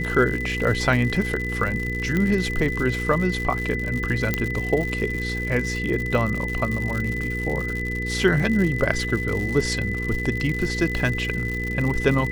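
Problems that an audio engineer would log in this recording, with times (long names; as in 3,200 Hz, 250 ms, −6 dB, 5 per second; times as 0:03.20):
surface crackle 130 per second −27 dBFS
mains hum 60 Hz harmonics 8 −29 dBFS
whistle 2,000 Hz −28 dBFS
0:02.17: click −12 dBFS
0:04.34: click −7 dBFS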